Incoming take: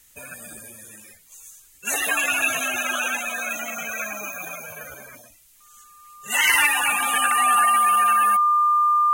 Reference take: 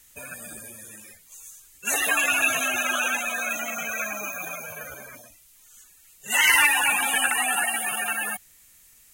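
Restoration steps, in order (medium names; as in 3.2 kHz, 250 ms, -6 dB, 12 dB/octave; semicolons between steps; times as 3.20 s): band-stop 1.2 kHz, Q 30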